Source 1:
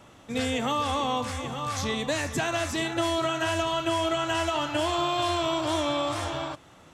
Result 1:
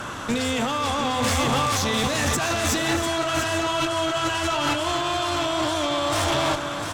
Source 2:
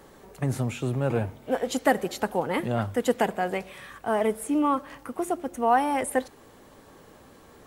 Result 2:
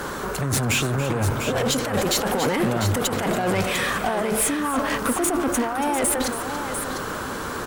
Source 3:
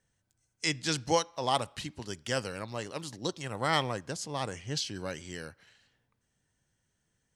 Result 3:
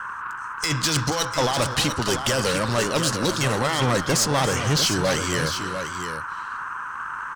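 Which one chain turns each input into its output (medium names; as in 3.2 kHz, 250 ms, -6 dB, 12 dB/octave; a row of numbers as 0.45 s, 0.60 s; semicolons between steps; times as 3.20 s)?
peaking EQ 6 kHz +3.5 dB 2.3 oct; compressor with a negative ratio -33 dBFS, ratio -1; band noise 940–1600 Hz -48 dBFS; valve stage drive 32 dB, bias 0.35; multi-tap echo 282/698 ms -13.5/-8.5 dB; normalise loudness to -23 LUFS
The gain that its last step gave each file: +12.5 dB, +14.0 dB, +16.5 dB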